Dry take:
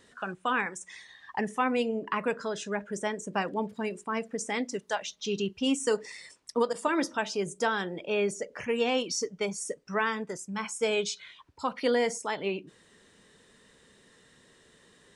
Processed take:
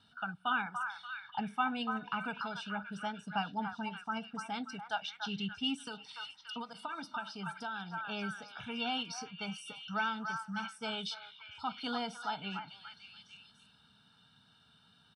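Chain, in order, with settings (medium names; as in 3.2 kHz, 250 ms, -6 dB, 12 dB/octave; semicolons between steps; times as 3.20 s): low-pass 7.2 kHz 12 dB/octave; comb 1.4 ms, depth 87%; repeats whose band climbs or falls 289 ms, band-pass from 1.2 kHz, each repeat 0.7 oct, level -4 dB; 5.74–8.09 s: compression 6:1, threshold -29 dBFS, peak gain reduction 9.5 dB; high-pass 94 Hz; static phaser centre 2 kHz, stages 6; trim -4 dB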